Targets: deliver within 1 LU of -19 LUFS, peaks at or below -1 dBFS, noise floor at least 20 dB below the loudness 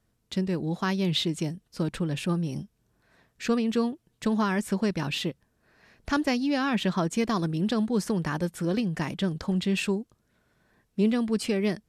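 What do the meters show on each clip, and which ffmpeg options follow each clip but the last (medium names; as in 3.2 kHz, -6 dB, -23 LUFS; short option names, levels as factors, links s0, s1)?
loudness -28.0 LUFS; peak level -13.5 dBFS; loudness target -19.0 LUFS
-> -af "volume=2.82"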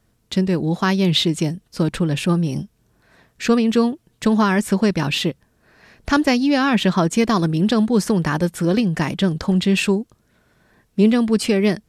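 loudness -19.0 LUFS; peak level -4.5 dBFS; noise floor -64 dBFS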